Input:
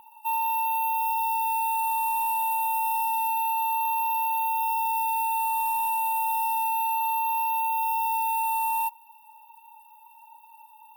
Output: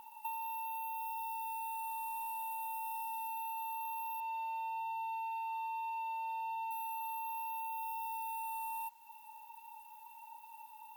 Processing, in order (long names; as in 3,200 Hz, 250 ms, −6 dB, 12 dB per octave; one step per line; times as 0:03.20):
0:04.20–0:06.71: low-pass filter 5,800 Hz 12 dB per octave
downward compressor 10 to 1, threshold −37 dBFS, peak gain reduction 13 dB
bit-depth reduction 12 bits, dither triangular
level −2 dB